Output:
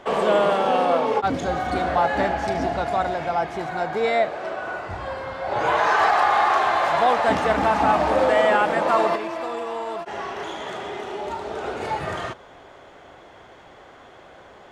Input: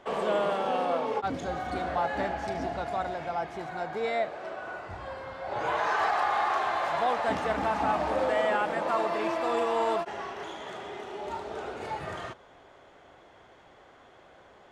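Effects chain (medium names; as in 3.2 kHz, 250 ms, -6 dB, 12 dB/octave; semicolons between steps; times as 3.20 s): 9.15–11.64 s: compression 12:1, threshold -34 dBFS, peak gain reduction 11.5 dB; trim +8.5 dB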